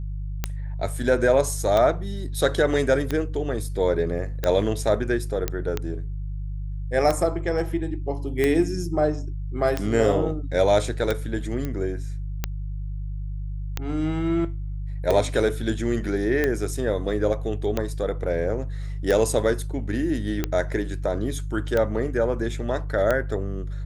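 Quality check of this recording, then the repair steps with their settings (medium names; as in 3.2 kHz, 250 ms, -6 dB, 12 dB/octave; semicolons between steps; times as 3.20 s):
hum 50 Hz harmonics 3 -30 dBFS
tick 45 rpm -10 dBFS
5.48 s: pop -10 dBFS
11.65 s: pop -16 dBFS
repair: de-click; de-hum 50 Hz, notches 3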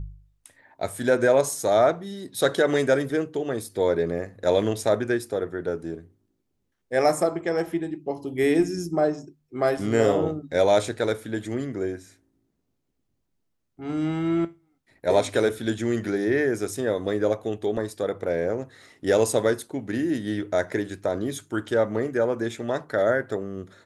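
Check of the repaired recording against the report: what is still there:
nothing left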